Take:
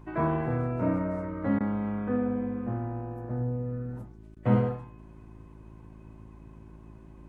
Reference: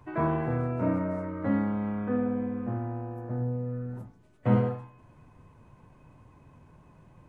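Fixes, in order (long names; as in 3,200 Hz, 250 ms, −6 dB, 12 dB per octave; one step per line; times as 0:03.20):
hum removal 54.2 Hz, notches 7
repair the gap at 0:01.59/0:04.35, 13 ms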